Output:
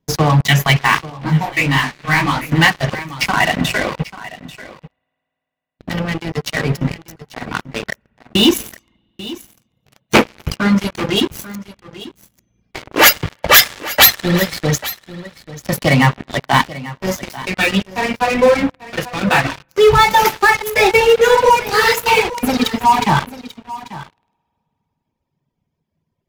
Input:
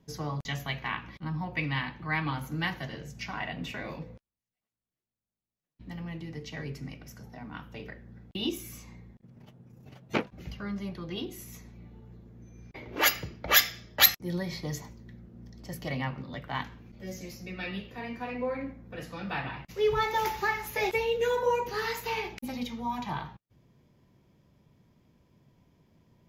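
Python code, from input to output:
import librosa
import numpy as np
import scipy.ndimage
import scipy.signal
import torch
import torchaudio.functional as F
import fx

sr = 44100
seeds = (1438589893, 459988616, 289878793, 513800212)

p1 = fx.high_shelf(x, sr, hz=4100.0, db=6.0, at=(9.92, 10.92))
p2 = np.sign(p1) * np.maximum(np.abs(p1) - 10.0 ** (-47.0 / 20.0), 0.0)
p3 = p1 + (p2 * 10.0 ** (-8.0 / 20.0))
p4 = fx.hum_notches(p3, sr, base_hz=60, count=8)
p5 = fx.rev_spring(p4, sr, rt60_s=3.8, pass_ms=(50,), chirp_ms=30, drr_db=5.5)
p6 = fx.dereverb_blind(p5, sr, rt60_s=1.9)
p7 = fx.rider(p6, sr, range_db=3, speed_s=2.0)
p8 = fx.leveller(p7, sr, passes=5)
p9 = p8 + fx.echo_single(p8, sr, ms=840, db=-16.5, dry=0)
p10 = fx.detune_double(p9, sr, cents=59, at=(1.09, 2.5), fade=0.02)
y = p10 * 10.0 ** (-1.0 / 20.0)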